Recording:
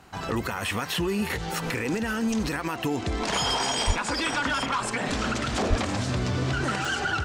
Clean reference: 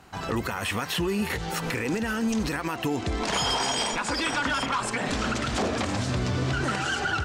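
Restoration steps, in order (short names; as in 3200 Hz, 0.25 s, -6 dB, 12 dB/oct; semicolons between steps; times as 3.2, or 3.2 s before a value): de-click; 3.86–3.98 HPF 140 Hz 24 dB/oct; 5.69–5.81 HPF 140 Hz 24 dB/oct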